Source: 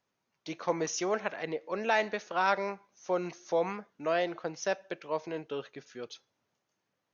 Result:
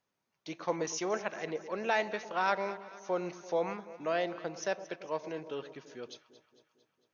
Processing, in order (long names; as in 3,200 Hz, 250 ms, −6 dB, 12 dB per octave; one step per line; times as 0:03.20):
delay that swaps between a low-pass and a high-pass 113 ms, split 950 Hz, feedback 74%, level −13 dB
level −2.5 dB